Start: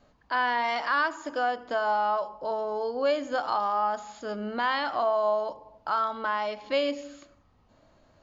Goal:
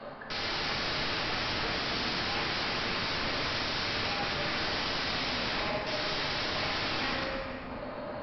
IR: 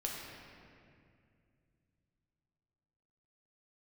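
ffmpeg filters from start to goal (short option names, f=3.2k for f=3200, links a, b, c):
-filter_complex "[0:a]asplit=2[a][b];[b]highpass=f=720:p=1,volume=31dB,asoftclip=type=tanh:threshold=-14dB[c];[a][c]amix=inputs=2:normalize=0,lowpass=f=1.9k:p=1,volume=-6dB,asplit=2[d][e];[e]acompressor=threshold=-34dB:ratio=8,volume=0dB[f];[d][f]amix=inputs=2:normalize=0,afreqshift=-33,aresample=11025,aeval=exprs='(mod(14.1*val(0)+1,2)-1)/14.1':c=same,aresample=44100,equalizer=f=3.2k:w=1.5:g=-2.5[g];[1:a]atrim=start_sample=2205[h];[g][h]afir=irnorm=-1:irlink=0,volume=-5dB"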